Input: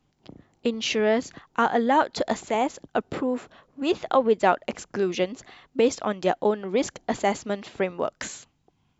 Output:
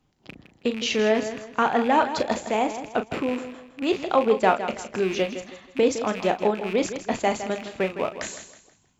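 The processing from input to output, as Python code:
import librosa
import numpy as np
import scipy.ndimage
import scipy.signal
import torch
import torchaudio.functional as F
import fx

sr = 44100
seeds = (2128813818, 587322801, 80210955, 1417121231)

p1 = fx.rattle_buzz(x, sr, strikes_db=-41.0, level_db=-25.0)
p2 = fx.doubler(p1, sr, ms=37.0, db=-10.0)
y = p2 + fx.echo_feedback(p2, sr, ms=161, feedback_pct=34, wet_db=-11.0, dry=0)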